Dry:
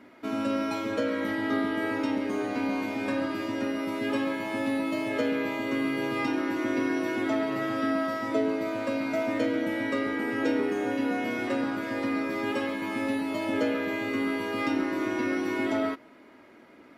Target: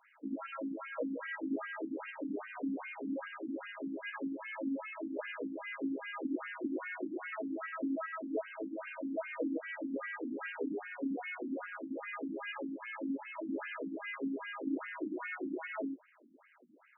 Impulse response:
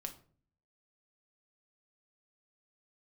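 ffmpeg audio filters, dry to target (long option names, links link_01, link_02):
-af "equalizer=frequency=4000:width=0.84:gain=4,afftfilt=real='re*between(b*sr/1024,210*pow(2200/210,0.5+0.5*sin(2*PI*2.5*pts/sr))/1.41,210*pow(2200/210,0.5+0.5*sin(2*PI*2.5*pts/sr))*1.41)':imag='im*between(b*sr/1024,210*pow(2200/210,0.5+0.5*sin(2*PI*2.5*pts/sr))/1.41,210*pow(2200/210,0.5+0.5*sin(2*PI*2.5*pts/sr))*1.41)':win_size=1024:overlap=0.75,volume=-5dB"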